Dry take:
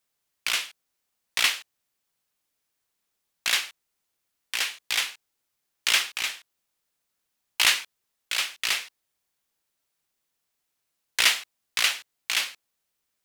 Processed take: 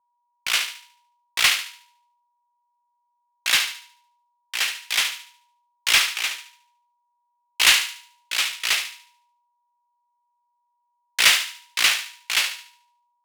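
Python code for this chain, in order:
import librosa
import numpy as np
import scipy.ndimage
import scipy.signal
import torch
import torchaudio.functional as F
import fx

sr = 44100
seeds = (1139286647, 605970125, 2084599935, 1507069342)

y = fx.low_shelf(x, sr, hz=330.0, db=-11.0)
y = fx.leveller(y, sr, passes=2)
y = fx.echo_thinned(y, sr, ms=73, feedback_pct=50, hz=880.0, wet_db=-7.0)
y = y + 10.0 ** (-48.0 / 20.0) * np.sin(2.0 * np.pi * 960.0 * np.arange(len(y)) / sr)
y = fx.band_widen(y, sr, depth_pct=70)
y = y * 10.0 ** (-4.0 / 20.0)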